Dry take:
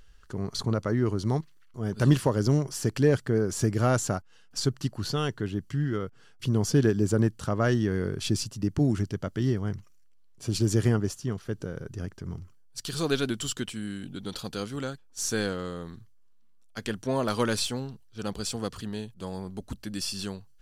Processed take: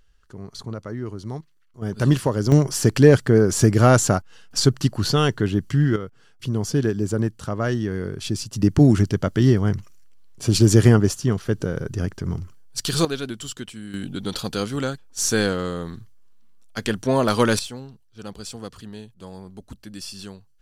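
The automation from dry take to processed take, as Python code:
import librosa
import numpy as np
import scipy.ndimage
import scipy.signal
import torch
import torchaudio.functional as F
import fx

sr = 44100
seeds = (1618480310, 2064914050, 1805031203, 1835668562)

y = fx.gain(x, sr, db=fx.steps((0.0, -5.0), (1.82, 3.0), (2.52, 9.5), (5.96, 1.0), (8.53, 10.0), (13.05, -1.5), (13.94, 8.0), (17.59, -3.0)))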